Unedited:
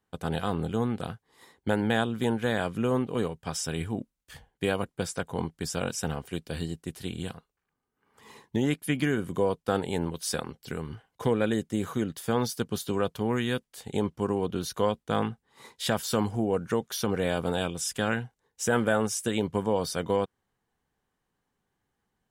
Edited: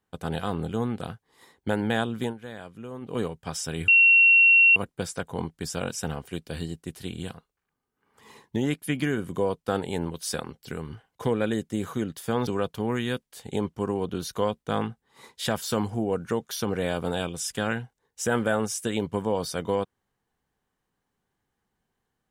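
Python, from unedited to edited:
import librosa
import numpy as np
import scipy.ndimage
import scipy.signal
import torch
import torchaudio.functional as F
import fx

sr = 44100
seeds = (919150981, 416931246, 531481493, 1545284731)

y = fx.edit(x, sr, fx.fade_down_up(start_s=2.18, length_s=0.99, db=-12.5, fade_s=0.16, curve='qsin'),
    fx.bleep(start_s=3.88, length_s=0.88, hz=2730.0, db=-13.0),
    fx.cut(start_s=12.47, length_s=0.41), tone=tone)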